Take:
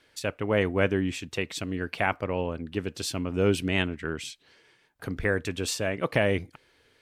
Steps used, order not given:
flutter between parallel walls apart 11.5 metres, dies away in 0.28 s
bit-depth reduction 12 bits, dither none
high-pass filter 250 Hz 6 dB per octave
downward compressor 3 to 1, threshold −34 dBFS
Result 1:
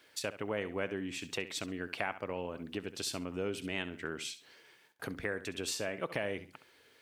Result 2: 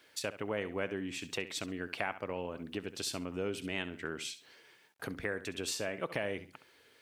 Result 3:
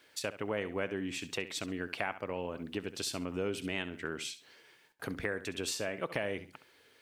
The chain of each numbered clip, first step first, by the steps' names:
bit-depth reduction, then flutter between parallel walls, then downward compressor, then high-pass filter
flutter between parallel walls, then bit-depth reduction, then downward compressor, then high-pass filter
high-pass filter, then bit-depth reduction, then flutter between parallel walls, then downward compressor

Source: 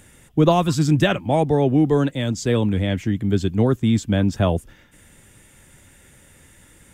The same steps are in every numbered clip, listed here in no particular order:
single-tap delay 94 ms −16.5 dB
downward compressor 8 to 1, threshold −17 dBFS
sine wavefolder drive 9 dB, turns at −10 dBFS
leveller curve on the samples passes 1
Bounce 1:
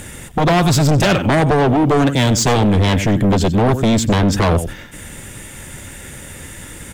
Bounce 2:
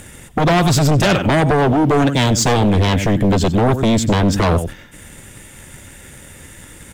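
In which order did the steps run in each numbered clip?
downward compressor, then single-tap delay, then sine wavefolder, then leveller curve on the samples
leveller curve on the samples, then single-tap delay, then downward compressor, then sine wavefolder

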